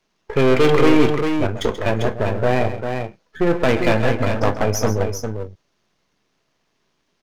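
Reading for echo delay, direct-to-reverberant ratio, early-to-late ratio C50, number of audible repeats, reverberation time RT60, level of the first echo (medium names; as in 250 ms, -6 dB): 133 ms, no reverb, no reverb, 2, no reverb, -12.0 dB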